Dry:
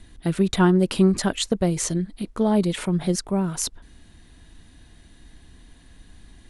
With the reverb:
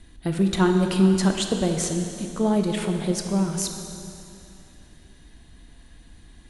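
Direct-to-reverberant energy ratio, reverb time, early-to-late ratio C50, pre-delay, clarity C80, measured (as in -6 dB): 4.0 dB, 2.8 s, 5.0 dB, 5 ms, 6.0 dB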